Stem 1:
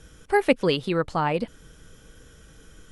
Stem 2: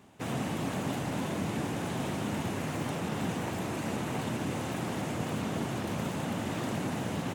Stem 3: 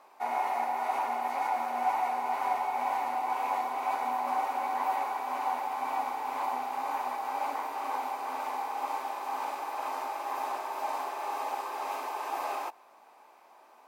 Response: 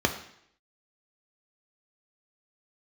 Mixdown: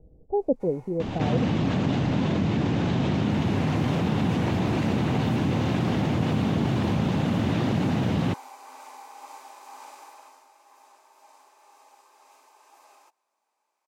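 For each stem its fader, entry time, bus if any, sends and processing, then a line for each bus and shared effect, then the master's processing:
-3.0 dB, 0.00 s, no send, Chebyshev low-pass 760 Hz, order 5
-1.0 dB, 1.00 s, no send, low-pass 4.1 kHz 24 dB/octave; bass shelf 360 Hz +11.5 dB; level flattener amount 70%
10.06 s -11 dB -> 10.44 s -22.5 dB, 0.40 s, no send, band-stop 720 Hz, Q 15; auto duck -17 dB, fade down 0.95 s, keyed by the first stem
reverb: none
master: peaking EQ 7.2 kHz +13 dB 1.6 oct

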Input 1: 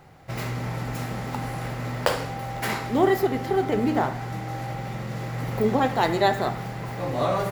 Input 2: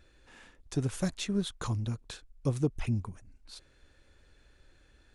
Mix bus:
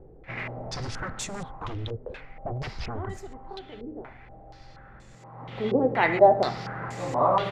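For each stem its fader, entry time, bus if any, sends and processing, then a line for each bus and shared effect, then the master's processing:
-2.5 dB, 0.00 s, no send, auto duck -17 dB, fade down 1.85 s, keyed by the second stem
-17.5 dB, 0.00 s, no send, sine folder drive 17 dB, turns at -16.5 dBFS; bass shelf 160 Hz +11.5 dB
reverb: none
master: bass shelf 140 Hz -5 dB; step-sequenced low-pass 4.2 Hz 440–7500 Hz

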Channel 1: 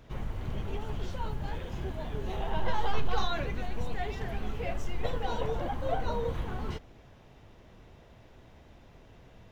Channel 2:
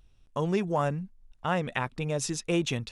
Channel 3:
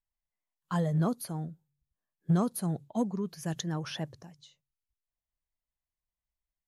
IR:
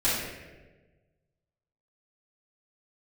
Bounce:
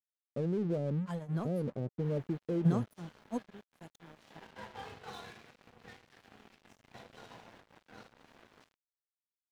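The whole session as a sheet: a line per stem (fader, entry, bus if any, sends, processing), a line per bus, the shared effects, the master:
-16.0 dB, 1.90 s, bus A, send -6 dB, spectral gate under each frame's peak -15 dB weak; trance gate "xxxxx.x.xx." 158 bpm -12 dB; saturation -25.5 dBFS, distortion -20 dB
+2.0 dB, 0.00 s, bus A, no send, steep low-pass 560 Hz 48 dB/octave
0.0 dB, 0.35 s, no bus, no send, upward expansion 2.5:1, over -37 dBFS
bus A: 0.0 dB, peaking EQ 1.6 kHz +9 dB 0.72 oct; peak limiter -25 dBFS, peak gain reduction 10 dB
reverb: on, RT60 1.3 s, pre-delay 4 ms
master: high-pass 100 Hz 24 dB/octave; crossover distortion -49 dBFS

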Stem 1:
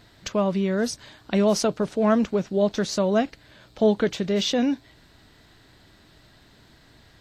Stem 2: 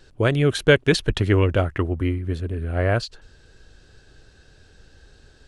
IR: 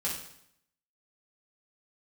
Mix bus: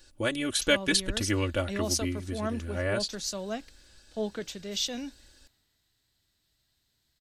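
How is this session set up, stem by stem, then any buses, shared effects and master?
-1.0 dB, 0.35 s, no send, three bands expanded up and down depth 40%
+2.5 dB, 0.00 s, no send, comb 3.5 ms, depth 82%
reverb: none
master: pre-emphasis filter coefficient 0.8

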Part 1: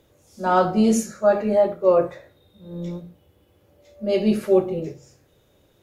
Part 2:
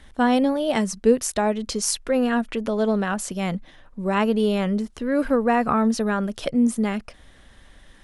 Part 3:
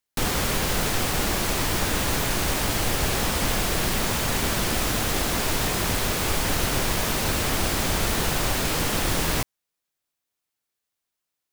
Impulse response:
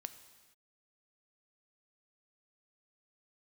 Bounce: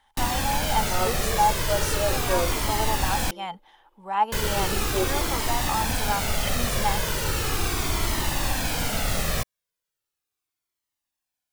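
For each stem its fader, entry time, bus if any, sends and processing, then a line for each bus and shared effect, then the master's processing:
-9.5 dB, 0.45 s, no send, elliptic high-pass 320 Hz
-10.5 dB, 0.00 s, no send, resonant low shelf 590 Hz -10.5 dB, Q 3; gain riding 0.5 s; small resonant body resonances 430/850/3100 Hz, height 14 dB
+2.0 dB, 0.00 s, muted 3.31–4.32 s, no send, Shepard-style flanger falling 0.37 Hz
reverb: none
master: none

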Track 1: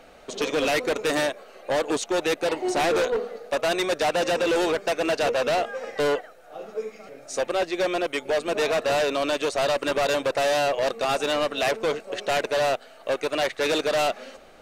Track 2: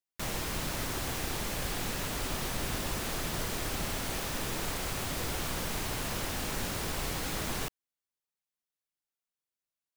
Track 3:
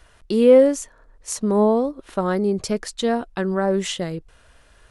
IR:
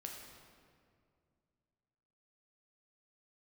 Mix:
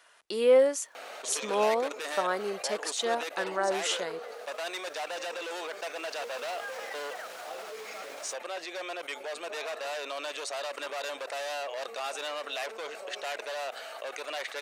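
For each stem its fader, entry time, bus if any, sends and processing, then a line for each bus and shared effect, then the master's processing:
-11.0 dB, 0.95 s, no send, level flattener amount 70%
4.02 s -22.5 dB -> 4.53 s -14 dB -> 5.71 s -14 dB -> 6.40 s -3.5 dB, 0.65 s, no send, treble shelf 8.5 kHz -11.5 dB; peak limiter -31.5 dBFS, peak gain reduction 9 dB
-2.5 dB, 0.00 s, no send, none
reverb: none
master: high-pass 650 Hz 12 dB/octave

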